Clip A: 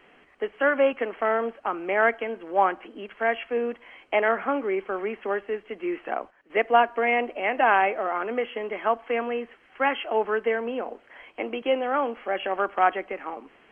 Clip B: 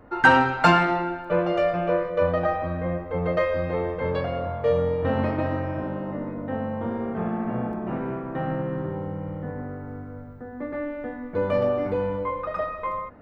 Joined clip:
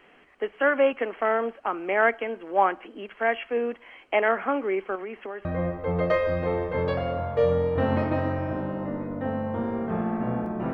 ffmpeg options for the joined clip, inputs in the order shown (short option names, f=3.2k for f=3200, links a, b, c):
-filter_complex "[0:a]asettb=1/sr,asplit=3[a][b][c];[a]atrim=end=4.954[d];[b]atrim=start=4.95:end=5.45,asetpts=PTS-STARTPTS,afade=t=in:d=0.004:c=qsin,afade=t=out:st=0.496:d=0.004:c=qsin,acompressor=threshold=-32dB:ratio=5:attack=3.2:release=140:knee=1:detection=peak[e];[c]atrim=start=5.446[f];[d][e]acrossfade=d=0.004:c1=hsin:c2=qsin[g];[g][f]acrossfade=d=0.004:c1=qsin:c2=hsin,apad=whole_dur=10.73,atrim=end=10.73,atrim=end=5.452[h];[1:a]atrim=start=2.718:end=8[i];[h][i]acrossfade=d=0.004:c1=hsin:c2=hsin"